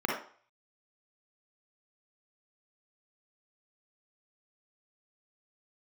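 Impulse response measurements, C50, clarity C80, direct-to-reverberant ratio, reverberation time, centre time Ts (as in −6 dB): 0.5 dB, 7.5 dB, −2.0 dB, 0.45 s, 45 ms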